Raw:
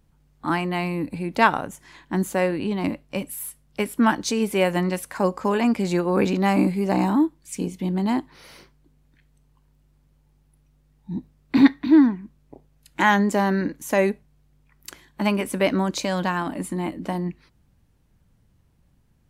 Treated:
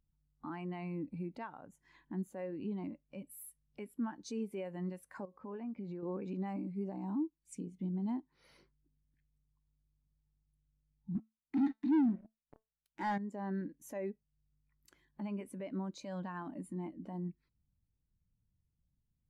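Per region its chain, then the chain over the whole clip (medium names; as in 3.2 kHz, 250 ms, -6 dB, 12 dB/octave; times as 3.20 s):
5.25–6.03 s: compression 5:1, threshold -29 dBFS + distance through air 160 m
11.15–13.18 s: dynamic bell 300 Hz, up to +7 dB, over -28 dBFS, Q 5.3 + waveshaping leveller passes 5 + feedback comb 220 Hz, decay 0.26 s, mix 40%
whole clip: compression 2.5:1, threshold -36 dBFS; peak limiter -25.5 dBFS; spectral contrast expander 1.5:1; trim +1 dB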